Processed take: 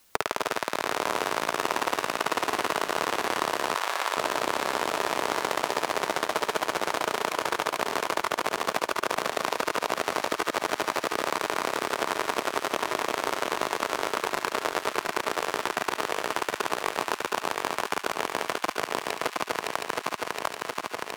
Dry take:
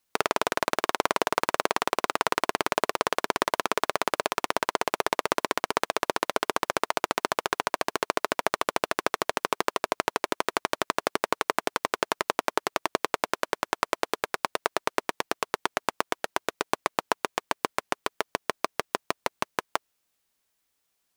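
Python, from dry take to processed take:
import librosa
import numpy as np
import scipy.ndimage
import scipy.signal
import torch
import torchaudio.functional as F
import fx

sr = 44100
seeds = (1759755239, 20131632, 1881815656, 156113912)

y = fx.reverse_delay_fb(x, sr, ms=359, feedback_pct=78, wet_db=-1.0)
y = fx.highpass(y, sr, hz=710.0, slope=12, at=(3.74, 4.17))
y = fx.echo_wet_highpass(y, sr, ms=71, feedback_pct=73, hz=1500.0, wet_db=-10)
y = fx.band_squash(y, sr, depth_pct=70)
y = y * librosa.db_to_amplitude(-5.0)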